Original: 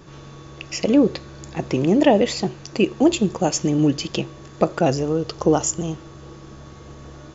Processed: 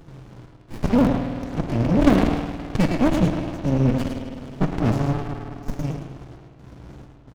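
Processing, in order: sawtooth pitch modulation -3 st, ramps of 492 ms; trance gate "xx.xx.xxxx..x" 66 bpm -24 dB; on a send: delay 107 ms -7.5 dB; on the sum: time-frequency box 2.13–2.96 s, 1.1–3.3 kHz +7 dB; in parallel at -9 dB: integer overflow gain 9 dB; on the sum: spring tank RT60 2.4 s, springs 52 ms, chirp 35 ms, DRR 4 dB; sliding maximum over 65 samples; trim -2 dB

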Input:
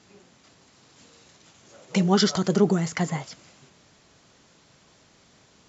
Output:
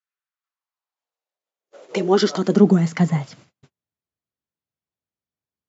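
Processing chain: treble shelf 6.7 kHz -12 dB; high-pass sweep 1.4 kHz -> 68 Hz, 0.27–4.10 s; gate -48 dBFS, range -40 dB; trim +2 dB

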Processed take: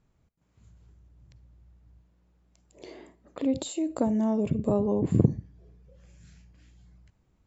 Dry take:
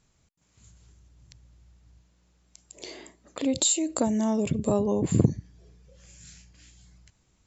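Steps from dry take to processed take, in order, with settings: low-pass 1 kHz 6 dB/octave; reverberation RT60 0.30 s, pre-delay 38 ms, DRR 19 dB

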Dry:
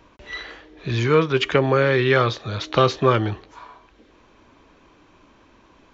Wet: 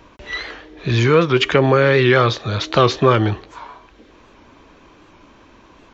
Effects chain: in parallel at +2 dB: peak limiter -12.5 dBFS, peak gain reduction 8 dB; on the sum: warped record 78 rpm, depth 100 cents; trim -1 dB

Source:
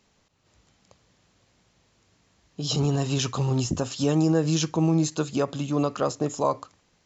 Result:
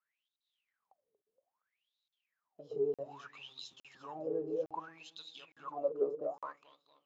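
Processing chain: companding laws mixed up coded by A; transient shaper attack +3 dB, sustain -1 dB; filtered feedback delay 234 ms, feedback 65%, low-pass 2 kHz, level -7 dB; in parallel at -6.5 dB: hard clipper -24.5 dBFS, distortion -7 dB; on the sum: wah-wah 0.62 Hz 410–3900 Hz, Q 21; crackling interface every 0.86 s, samples 2048, zero, from 0.36 s; trim +1.5 dB

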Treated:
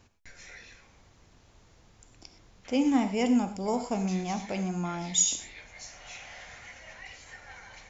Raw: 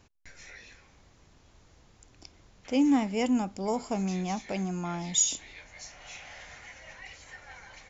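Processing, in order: gated-style reverb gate 140 ms flat, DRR 8.5 dB

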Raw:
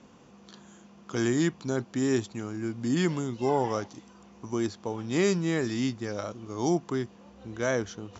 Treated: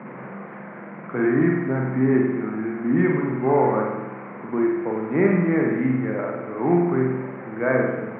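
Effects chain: one-bit delta coder 64 kbps, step -36.5 dBFS; short-mantissa float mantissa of 2-bit; Chebyshev band-pass 130–2200 Hz, order 5; spring tank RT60 1.1 s, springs 46 ms, chirp 80 ms, DRR -0.5 dB; trim +5 dB

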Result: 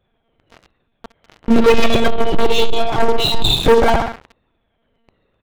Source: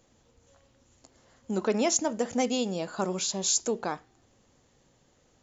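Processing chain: drifting ripple filter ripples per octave 2, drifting -1.1 Hz, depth 20 dB; dynamic bell 1.1 kHz, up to -6 dB, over -38 dBFS, Q 0.77; on a send: feedback delay 64 ms, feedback 49%, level -8 dB; on the sum: monotone LPC vocoder at 8 kHz 230 Hz; 2.07–3.61 s: static phaser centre 350 Hz, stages 8; waveshaping leveller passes 5; trim +6 dB

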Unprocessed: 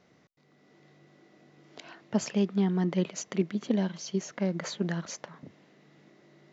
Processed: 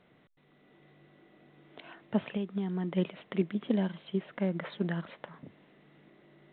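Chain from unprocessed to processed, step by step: 2.18–2.97 s: compression 10:1, threshold -28 dBFS, peak gain reduction 8 dB; trim -1.5 dB; A-law 64 kbps 8 kHz

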